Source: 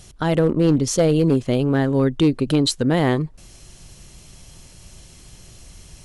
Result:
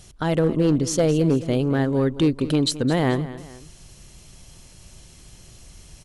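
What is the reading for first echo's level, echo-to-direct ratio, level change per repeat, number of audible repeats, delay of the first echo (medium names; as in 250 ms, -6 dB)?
-15.5 dB, -14.5 dB, -7.0 dB, 2, 216 ms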